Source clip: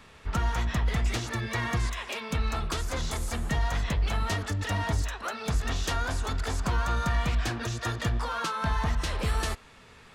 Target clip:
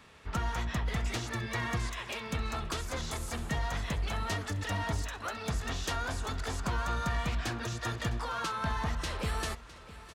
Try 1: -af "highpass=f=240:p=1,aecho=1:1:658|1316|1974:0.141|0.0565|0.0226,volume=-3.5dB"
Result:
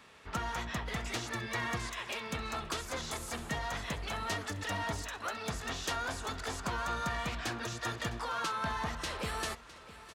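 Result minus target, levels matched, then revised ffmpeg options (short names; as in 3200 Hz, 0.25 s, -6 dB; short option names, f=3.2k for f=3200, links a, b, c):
125 Hz band -5.0 dB
-af "highpass=f=60:p=1,aecho=1:1:658|1316|1974:0.141|0.0565|0.0226,volume=-3.5dB"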